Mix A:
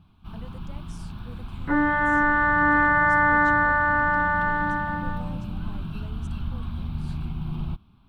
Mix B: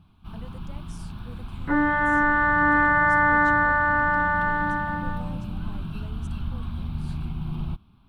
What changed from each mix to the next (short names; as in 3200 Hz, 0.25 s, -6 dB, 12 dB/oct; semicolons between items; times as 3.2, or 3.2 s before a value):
master: add bell 10000 Hz +4 dB 0.37 oct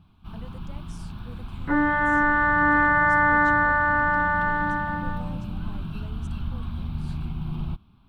master: add bell 10000 Hz -4 dB 0.37 oct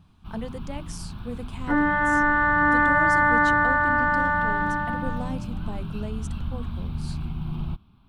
speech +11.5 dB